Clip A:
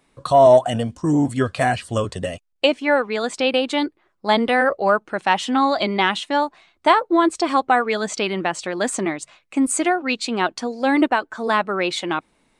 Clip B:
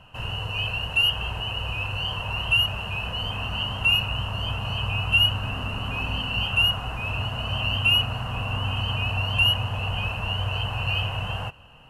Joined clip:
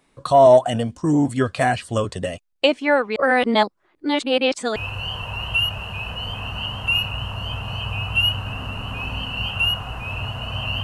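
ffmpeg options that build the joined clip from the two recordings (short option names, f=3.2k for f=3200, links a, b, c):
-filter_complex "[0:a]apad=whole_dur=10.83,atrim=end=10.83,asplit=2[a][b];[a]atrim=end=3.162[c];[b]atrim=start=3.158:end=4.762,asetpts=PTS-STARTPTS,areverse[d];[1:a]atrim=start=1.728:end=7.8[e];[c][d]acrossfade=d=0.004:c1=hsin:c2=hsin[f];[f][e]acrossfade=d=0.004:c1=hsin:c2=hsin"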